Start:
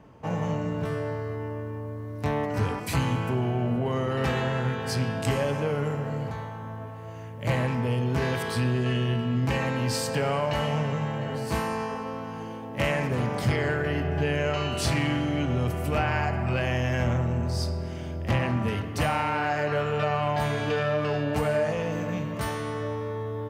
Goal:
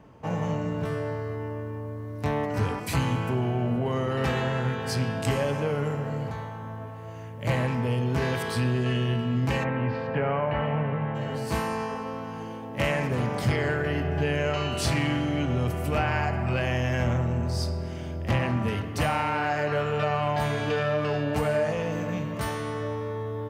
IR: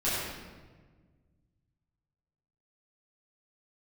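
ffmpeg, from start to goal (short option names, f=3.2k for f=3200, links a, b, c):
-filter_complex "[0:a]asplit=3[a][b][c];[a]afade=t=out:st=9.63:d=0.02[d];[b]lowpass=f=2.4k:w=0.5412,lowpass=f=2.4k:w=1.3066,afade=t=in:st=9.63:d=0.02,afade=t=out:st=11.14:d=0.02[e];[c]afade=t=in:st=11.14:d=0.02[f];[d][e][f]amix=inputs=3:normalize=0"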